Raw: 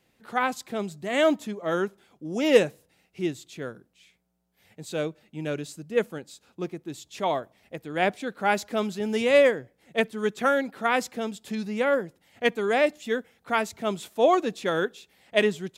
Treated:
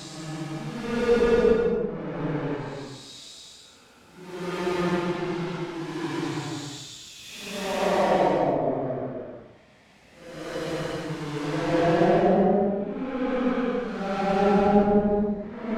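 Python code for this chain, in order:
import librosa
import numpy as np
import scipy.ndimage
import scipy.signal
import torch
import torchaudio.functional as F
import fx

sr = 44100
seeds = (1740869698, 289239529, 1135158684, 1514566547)

y = fx.halfwave_hold(x, sr)
y = fx.env_lowpass_down(y, sr, base_hz=470.0, full_db=-18.0)
y = fx.paulstretch(y, sr, seeds[0], factor=5.3, window_s=0.25, from_s=5.72)
y = F.gain(torch.from_numpy(y), 3.0).numpy()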